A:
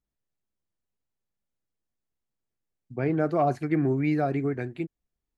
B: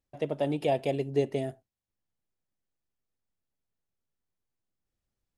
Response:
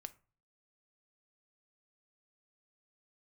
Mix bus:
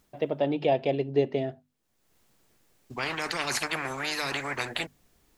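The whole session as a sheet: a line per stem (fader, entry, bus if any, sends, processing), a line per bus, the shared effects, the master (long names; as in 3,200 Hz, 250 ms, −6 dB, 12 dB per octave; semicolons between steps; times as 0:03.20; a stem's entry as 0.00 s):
+2.0 dB, 0.00 s, no send, every bin compressed towards the loudest bin 10 to 1; automatic ducking −24 dB, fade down 0.65 s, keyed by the second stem
+3.0 dB, 0.00 s, no send, low-pass filter 4,600 Hz 24 dB per octave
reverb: not used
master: low-shelf EQ 74 Hz −9.5 dB; mains-hum notches 50/100/150/200/250 Hz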